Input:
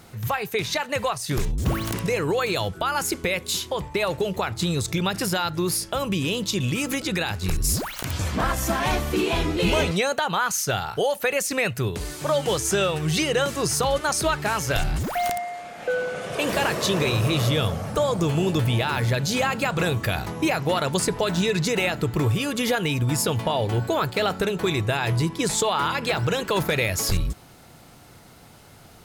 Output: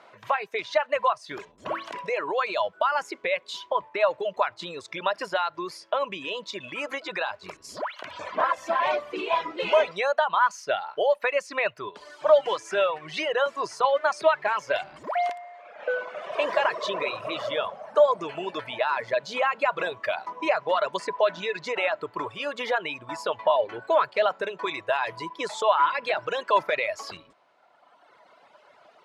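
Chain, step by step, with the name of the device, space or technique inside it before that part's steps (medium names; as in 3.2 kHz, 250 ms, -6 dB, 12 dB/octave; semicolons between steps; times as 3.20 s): tin-can telephone (band-pass 580–2700 Hz; small resonant body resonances 610/1000 Hz, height 11 dB, ringing for 45 ms); reverb removal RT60 1.8 s; 24.67–26.61 s: treble shelf 7.3 kHz +5.5 dB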